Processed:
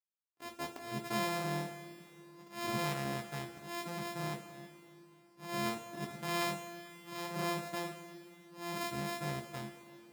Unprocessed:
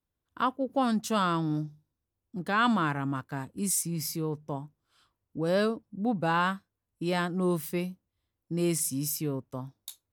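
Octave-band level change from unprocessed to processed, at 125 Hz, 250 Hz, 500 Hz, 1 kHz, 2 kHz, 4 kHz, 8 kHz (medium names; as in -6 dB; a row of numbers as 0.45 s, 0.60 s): -9.5 dB, -12.0 dB, -8.5 dB, -8.5 dB, -6.5 dB, -4.0 dB, -13.0 dB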